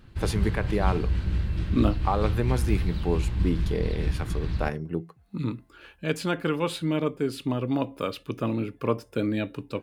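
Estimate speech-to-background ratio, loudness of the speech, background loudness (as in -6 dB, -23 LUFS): 0.0 dB, -29.5 LUFS, -29.5 LUFS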